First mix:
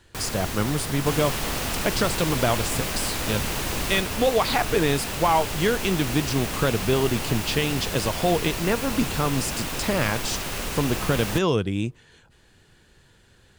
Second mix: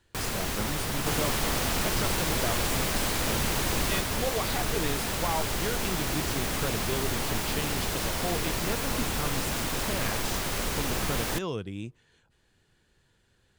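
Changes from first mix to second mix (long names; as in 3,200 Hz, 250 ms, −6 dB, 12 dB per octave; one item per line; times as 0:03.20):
speech −11.0 dB
second sound: add parametric band 2,700 Hz −4 dB 0.28 octaves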